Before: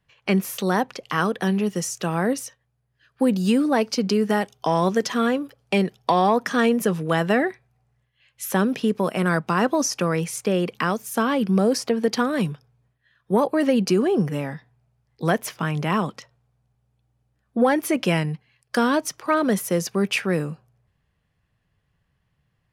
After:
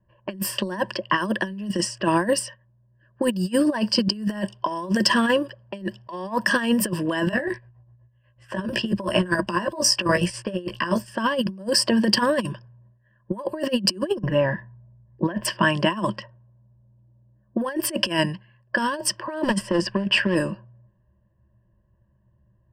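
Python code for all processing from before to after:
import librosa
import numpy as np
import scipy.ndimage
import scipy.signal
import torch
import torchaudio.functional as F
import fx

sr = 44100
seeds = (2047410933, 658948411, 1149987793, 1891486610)

y = fx.chain(x, sr, fx.chopper(hz=8.1, depth_pct=60, duty_pct=55),
    fx.doubler(ms=17.0, db=-3.0), at=(7.25, 11.09))
y = fx.chain(y, sr, fx.lowpass(hz=2600.0, slope=12),
    fx.low_shelf(hz=73.0, db=12.0),
    fx.resample_bad(factor=2, down='filtered', up='hold'), at=(14.19, 15.45))
y = fx.chain(y, sr, fx.lowpass(hz=12000.0, slope=12),
    fx.clip_hard(threshold_db=-22.0), at=(19.42, 20.35))
y = fx.env_lowpass(y, sr, base_hz=700.0, full_db=-18.5)
y = fx.ripple_eq(y, sr, per_octave=1.3, db=17)
y = fx.over_compress(y, sr, threshold_db=-22.0, ratio=-0.5)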